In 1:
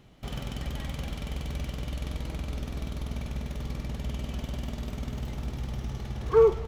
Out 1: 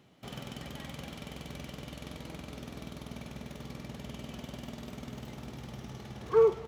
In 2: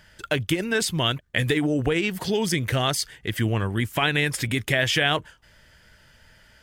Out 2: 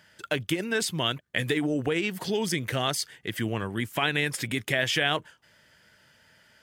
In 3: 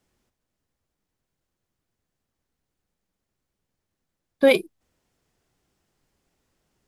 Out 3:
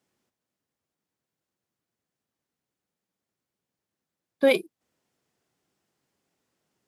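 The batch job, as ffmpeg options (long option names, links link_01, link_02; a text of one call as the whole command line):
ffmpeg -i in.wav -af "highpass=140,volume=-3.5dB" out.wav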